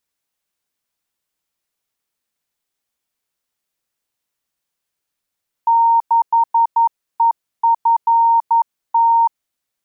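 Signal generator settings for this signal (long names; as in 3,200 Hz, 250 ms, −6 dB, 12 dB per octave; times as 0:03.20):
Morse code "6EFT" 11 words per minute 923 Hz −9.5 dBFS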